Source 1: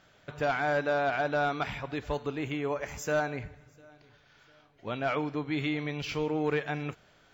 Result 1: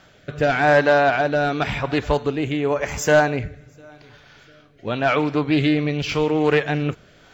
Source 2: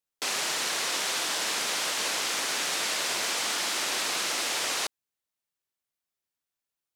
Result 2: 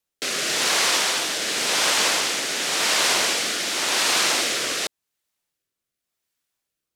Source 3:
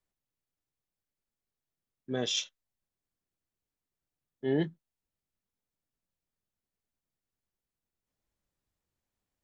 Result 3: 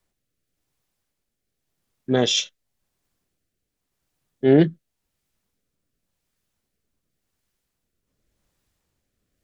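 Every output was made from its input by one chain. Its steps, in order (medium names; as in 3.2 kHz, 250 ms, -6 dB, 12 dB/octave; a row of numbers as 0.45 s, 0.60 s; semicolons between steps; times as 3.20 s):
rotary cabinet horn 0.9 Hz; loudspeaker Doppler distortion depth 0.14 ms; normalise loudness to -20 LUFS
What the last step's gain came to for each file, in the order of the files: +13.5 dB, +10.0 dB, +15.0 dB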